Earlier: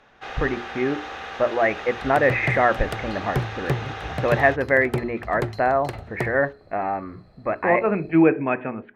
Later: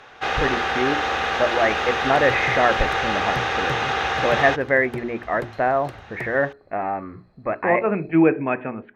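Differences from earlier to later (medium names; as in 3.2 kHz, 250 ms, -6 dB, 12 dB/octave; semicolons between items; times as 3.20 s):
first sound +11.5 dB; second sound -7.5 dB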